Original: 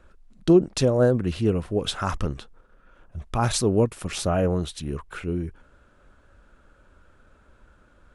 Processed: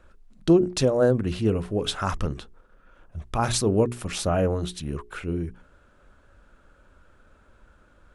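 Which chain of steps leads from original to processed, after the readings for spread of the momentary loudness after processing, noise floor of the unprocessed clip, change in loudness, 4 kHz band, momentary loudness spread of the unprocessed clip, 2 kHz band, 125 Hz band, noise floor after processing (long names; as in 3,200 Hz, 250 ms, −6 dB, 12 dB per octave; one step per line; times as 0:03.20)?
14 LU, −58 dBFS, −1.0 dB, 0.0 dB, 14 LU, 0.0 dB, −1.5 dB, −58 dBFS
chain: mains-hum notches 60/120/180/240/300/360/420 Hz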